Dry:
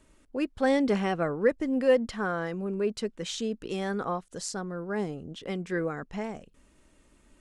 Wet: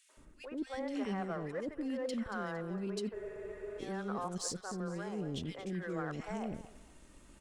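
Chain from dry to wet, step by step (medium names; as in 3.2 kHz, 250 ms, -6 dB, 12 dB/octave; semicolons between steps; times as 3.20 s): reverse; compression 6:1, threshold -40 dBFS, peak gain reduction 21 dB; reverse; three bands offset in time highs, mids, lows 90/170 ms, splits 480/2100 Hz; in parallel at -9.5 dB: crossover distortion -54 dBFS; on the sum: thinning echo 229 ms, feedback 33%, high-pass 700 Hz, level -12 dB; spectral freeze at 3.16 s, 0.64 s; trim +3.5 dB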